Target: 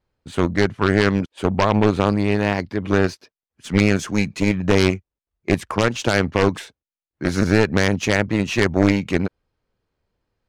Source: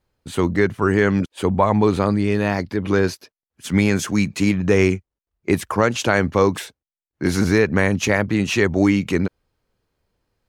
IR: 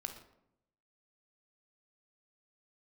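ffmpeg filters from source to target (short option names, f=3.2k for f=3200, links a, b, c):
-af "aeval=exprs='0.75*(cos(1*acos(clip(val(0)/0.75,-1,1)))-cos(1*PI/2))+0.299*(cos(6*acos(clip(val(0)/0.75,-1,1)))-cos(6*PI/2))+0.188*(cos(8*acos(clip(val(0)/0.75,-1,1)))-cos(8*PI/2))':c=same,adynamicsmooth=sensitivity=5.5:basefreq=7.2k,volume=-2.5dB"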